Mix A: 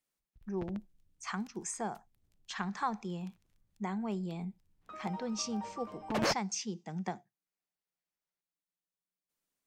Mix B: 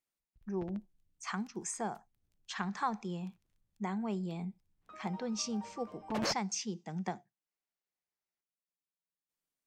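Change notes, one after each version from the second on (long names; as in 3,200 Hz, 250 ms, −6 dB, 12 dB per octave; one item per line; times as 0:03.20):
background −5.0 dB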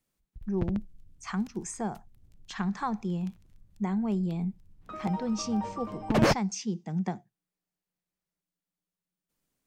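background +10.0 dB
master: add low-shelf EQ 300 Hz +12 dB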